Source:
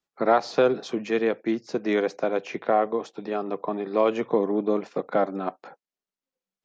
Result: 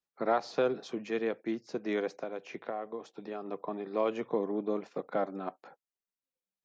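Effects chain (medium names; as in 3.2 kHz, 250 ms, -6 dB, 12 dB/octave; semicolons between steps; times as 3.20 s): 2.20–3.45 s: compression 3:1, threshold -27 dBFS, peak gain reduction 8.5 dB; trim -8.5 dB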